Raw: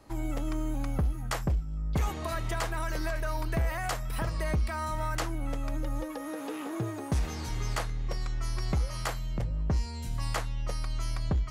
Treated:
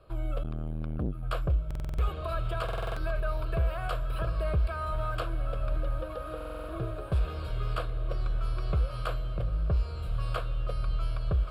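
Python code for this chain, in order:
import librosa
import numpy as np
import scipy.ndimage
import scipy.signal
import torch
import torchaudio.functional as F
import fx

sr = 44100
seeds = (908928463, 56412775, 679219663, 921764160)

y = fx.lowpass(x, sr, hz=2400.0, slope=6)
y = fx.fixed_phaser(y, sr, hz=1300.0, stages=8)
y = fx.echo_diffused(y, sr, ms=1273, feedback_pct=66, wet_db=-12.0)
y = fx.buffer_glitch(y, sr, at_s=(1.66, 2.64, 6.36), block=2048, repeats=6)
y = fx.transformer_sat(y, sr, knee_hz=200.0, at=(0.43, 1.23))
y = y * librosa.db_to_amplitude(2.5)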